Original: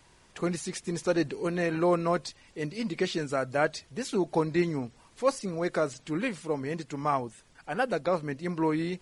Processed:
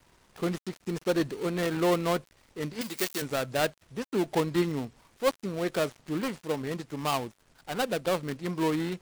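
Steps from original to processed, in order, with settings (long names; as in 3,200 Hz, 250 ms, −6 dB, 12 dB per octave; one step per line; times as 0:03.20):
gap after every zero crossing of 0.21 ms
0:02.81–0:03.22: RIAA equalisation recording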